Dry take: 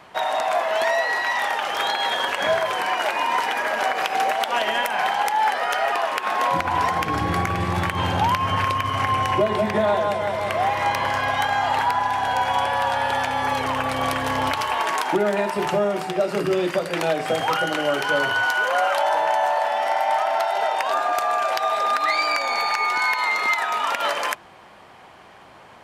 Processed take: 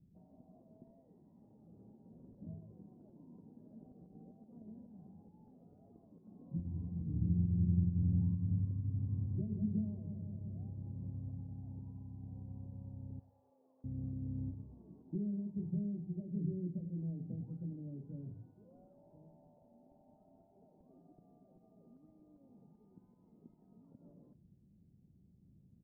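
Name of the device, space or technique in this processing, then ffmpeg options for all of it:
the neighbour's flat through the wall: -filter_complex "[0:a]asettb=1/sr,asplit=3[a][b][c];[a]atrim=end=13.194[d];[b]atrim=start=13.19:end=13.84,asetpts=PTS-STARTPTS,afade=t=in:d=0.004:c=qsin,afade=t=out:st=0.646:d=0.004:c=qsin,highpass=f=570:w=0.5412,highpass=f=570:w=1.3066[e];[c]atrim=start=13.836[f];[d][e]acrossfade=d=0.004:c1=hsin:c2=qsin[g];[g][f]acrossfade=d=0.004:c1=qsin:c2=hsin,lowpass=f=210:w=0.5412,lowpass=f=210:w=1.3066,equalizer=f=170:t=o:w=0.4:g=3,asplit=2[h][i];[i]adelay=103,lowpass=f=2k:p=1,volume=-19.5dB,asplit=2[j][k];[k]adelay=103,lowpass=f=2k:p=1,volume=0.39,asplit=2[l][m];[m]adelay=103,lowpass=f=2k:p=1,volume=0.39[n];[h][j][l][n]amix=inputs=4:normalize=0,volume=-6dB"

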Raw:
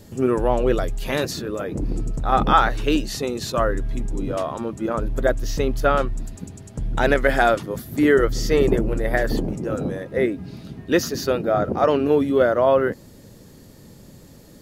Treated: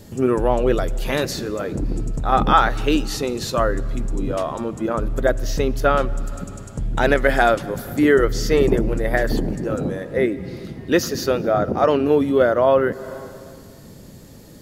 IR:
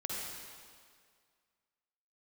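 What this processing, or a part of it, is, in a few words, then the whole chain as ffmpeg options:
ducked reverb: -filter_complex "[0:a]asplit=3[a][b][c];[1:a]atrim=start_sample=2205[d];[b][d]afir=irnorm=-1:irlink=0[e];[c]apad=whole_len=644738[f];[e][f]sidechaincompress=threshold=-33dB:ratio=4:attack=16:release=172,volume=-10.5dB[g];[a][g]amix=inputs=2:normalize=0,volume=1dB"

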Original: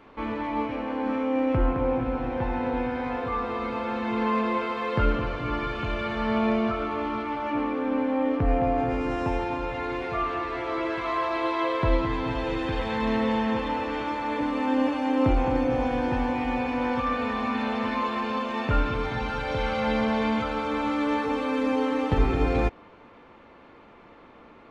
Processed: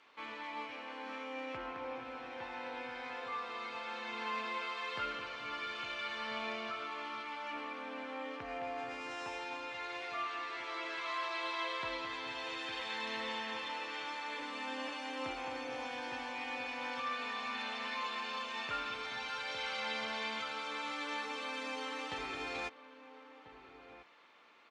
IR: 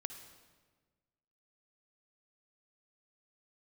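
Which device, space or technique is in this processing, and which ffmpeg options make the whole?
piezo pickup straight into a mixer: -filter_complex "[0:a]lowpass=6k,aderivative,asplit=2[a][b];[b]adelay=1341,volume=-12dB,highshelf=f=4k:g=-30.2[c];[a][c]amix=inputs=2:normalize=0,volume=5dB"

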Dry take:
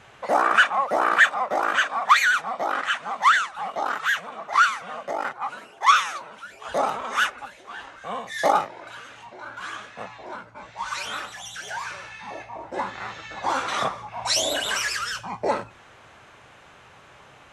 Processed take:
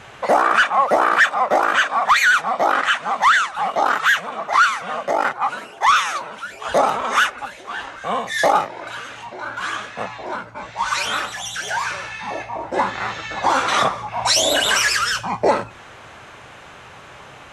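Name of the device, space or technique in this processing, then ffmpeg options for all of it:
soft clipper into limiter: -af "asoftclip=type=tanh:threshold=-8dB,alimiter=limit=-15.5dB:level=0:latency=1:release=289,volume=9dB"

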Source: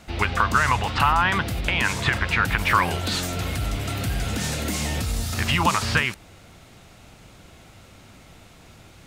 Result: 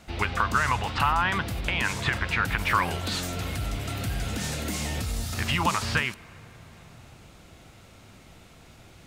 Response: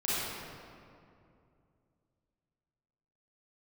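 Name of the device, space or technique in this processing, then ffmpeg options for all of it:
compressed reverb return: -filter_complex "[0:a]asplit=2[a][b];[1:a]atrim=start_sample=2205[c];[b][c]afir=irnorm=-1:irlink=0,acompressor=threshold=-26dB:ratio=6,volume=-16dB[d];[a][d]amix=inputs=2:normalize=0,volume=-4.5dB"

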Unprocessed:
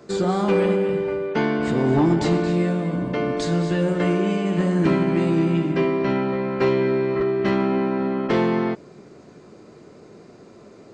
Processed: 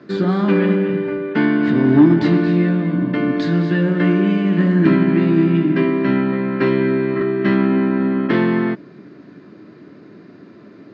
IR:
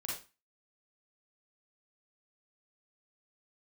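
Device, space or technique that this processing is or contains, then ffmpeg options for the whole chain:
guitar cabinet: -af "highpass=110,equalizer=f=120:t=q:w=4:g=4,equalizer=f=190:t=q:w=4:g=5,equalizer=f=290:t=q:w=4:g=10,equalizer=f=480:t=q:w=4:g=-6,equalizer=f=780:t=q:w=4:g=-6,equalizer=f=1.7k:t=q:w=4:g=8,lowpass=f=4.4k:w=0.5412,lowpass=f=4.4k:w=1.3066,volume=1.5dB"

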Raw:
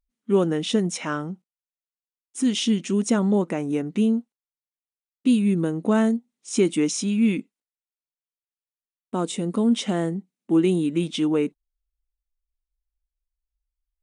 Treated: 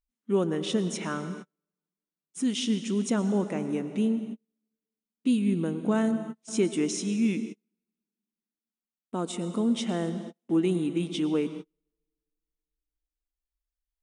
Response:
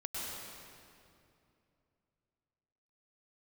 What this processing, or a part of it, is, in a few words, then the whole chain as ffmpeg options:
keyed gated reverb: -filter_complex "[0:a]asplit=3[a][b][c];[1:a]atrim=start_sample=2205[d];[b][d]afir=irnorm=-1:irlink=0[e];[c]apad=whole_len=618718[f];[e][f]sidechaingate=range=-42dB:threshold=-42dB:ratio=16:detection=peak,volume=-10dB[g];[a][g]amix=inputs=2:normalize=0,volume=-7dB"

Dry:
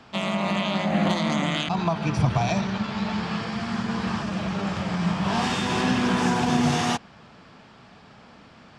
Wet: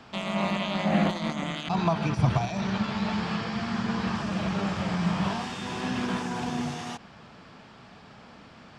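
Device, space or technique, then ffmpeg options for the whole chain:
de-esser from a sidechain: -filter_complex "[0:a]asplit=2[a][b];[b]highpass=f=5.8k:w=0.5412,highpass=f=5.8k:w=1.3066,apad=whole_len=387366[c];[a][c]sidechaincompress=threshold=-49dB:ratio=6:attack=2.4:release=42,asettb=1/sr,asplit=3[d][e][f];[d]atrim=end=3.354[g];[e]atrim=start=3.35:end=4.15,asetpts=PTS-STARTPTS,afade=t=in:d=0.004:c=qsin,afade=t=out:st=0.796:d=0.004:c=qsin,lowpass=7.9k[h];[f]atrim=start=4.146[i];[g][h]acrossfade=d=0.004:c1=hsin:c2=qsin[j];[j][i]acrossfade=d=0.004:c1=qsin:c2=hsin"

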